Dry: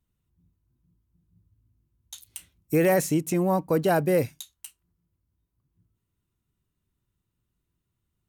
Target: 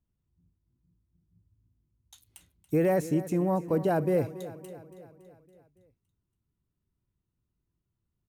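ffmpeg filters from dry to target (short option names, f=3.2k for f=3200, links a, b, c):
-af "tiltshelf=f=1.5k:g=5.5,aecho=1:1:281|562|843|1124|1405|1686:0.178|0.101|0.0578|0.0329|0.0188|0.0107,volume=-8dB"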